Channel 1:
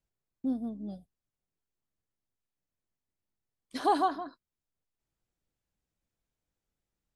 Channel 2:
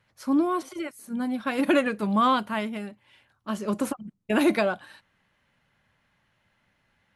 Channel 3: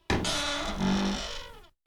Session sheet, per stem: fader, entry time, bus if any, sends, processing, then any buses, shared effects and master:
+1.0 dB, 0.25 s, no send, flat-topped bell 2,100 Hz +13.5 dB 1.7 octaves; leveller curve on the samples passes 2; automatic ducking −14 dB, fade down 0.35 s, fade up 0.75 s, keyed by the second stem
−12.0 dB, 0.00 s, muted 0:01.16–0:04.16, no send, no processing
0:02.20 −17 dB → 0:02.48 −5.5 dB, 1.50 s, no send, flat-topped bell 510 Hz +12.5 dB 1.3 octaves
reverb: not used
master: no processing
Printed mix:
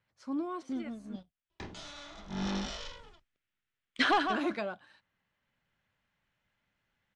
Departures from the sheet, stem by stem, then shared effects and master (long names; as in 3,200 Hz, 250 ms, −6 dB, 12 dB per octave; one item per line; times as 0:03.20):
stem 3: missing flat-topped bell 510 Hz +12.5 dB 1.3 octaves
master: extra low-pass filter 7,300 Hz 24 dB per octave